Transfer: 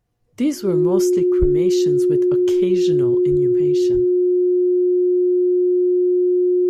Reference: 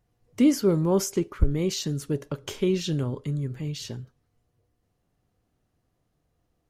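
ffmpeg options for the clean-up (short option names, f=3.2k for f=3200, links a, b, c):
-filter_complex "[0:a]bandreject=f=360:w=30,asplit=3[a][b][c];[a]afade=t=out:st=3.3:d=0.02[d];[b]highpass=f=140:w=0.5412,highpass=f=140:w=1.3066,afade=t=in:st=3.3:d=0.02,afade=t=out:st=3.42:d=0.02[e];[c]afade=t=in:st=3.42:d=0.02[f];[d][e][f]amix=inputs=3:normalize=0,asplit=3[g][h][i];[g]afade=t=out:st=3.93:d=0.02[j];[h]highpass=f=140:w=0.5412,highpass=f=140:w=1.3066,afade=t=in:st=3.93:d=0.02,afade=t=out:st=4.05:d=0.02[k];[i]afade=t=in:st=4.05:d=0.02[l];[j][k][l]amix=inputs=3:normalize=0"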